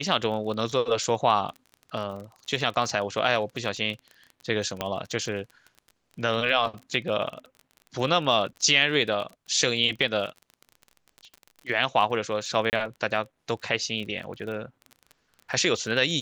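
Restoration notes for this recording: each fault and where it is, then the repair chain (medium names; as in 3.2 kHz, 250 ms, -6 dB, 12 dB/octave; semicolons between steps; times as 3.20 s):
crackle 29 per s -34 dBFS
4.81 s: pop -12 dBFS
12.70–12.73 s: dropout 29 ms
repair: de-click; interpolate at 12.70 s, 29 ms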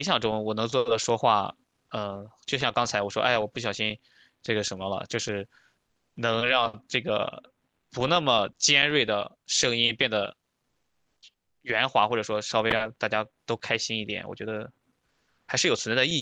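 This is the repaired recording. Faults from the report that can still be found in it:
nothing left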